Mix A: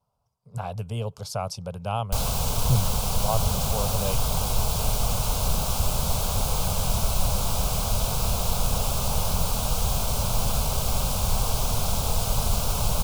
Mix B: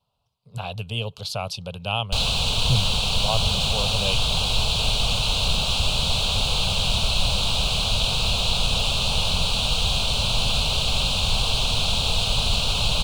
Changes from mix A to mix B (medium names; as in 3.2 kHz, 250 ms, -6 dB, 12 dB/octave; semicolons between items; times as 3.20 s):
background: add Savitzky-Golay filter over 9 samples; master: add high-order bell 3.3 kHz +15 dB 1 oct